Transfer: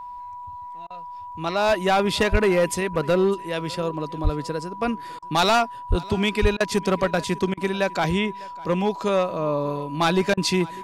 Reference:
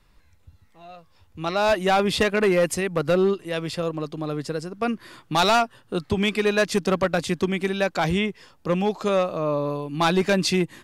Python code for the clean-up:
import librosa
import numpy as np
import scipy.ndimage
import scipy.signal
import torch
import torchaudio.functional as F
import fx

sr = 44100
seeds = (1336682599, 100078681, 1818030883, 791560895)

y = fx.notch(x, sr, hz=980.0, q=30.0)
y = fx.fix_deplosive(y, sr, at_s=(2.31, 4.23, 5.89, 6.41))
y = fx.fix_interpolate(y, sr, at_s=(0.87, 5.19, 6.57, 7.54, 10.34), length_ms=32.0)
y = fx.fix_echo_inverse(y, sr, delay_ms=601, level_db=-22.5)